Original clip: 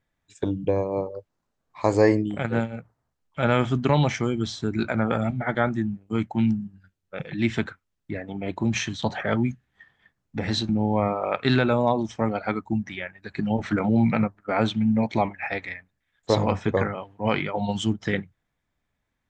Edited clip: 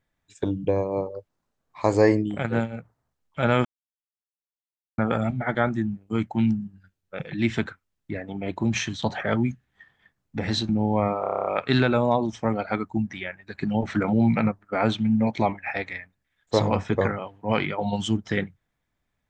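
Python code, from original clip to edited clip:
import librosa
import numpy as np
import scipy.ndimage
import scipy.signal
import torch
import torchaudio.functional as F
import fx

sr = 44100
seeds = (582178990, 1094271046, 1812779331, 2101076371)

y = fx.edit(x, sr, fx.silence(start_s=3.65, length_s=1.33),
    fx.stutter(start_s=11.21, slice_s=0.03, count=9), tone=tone)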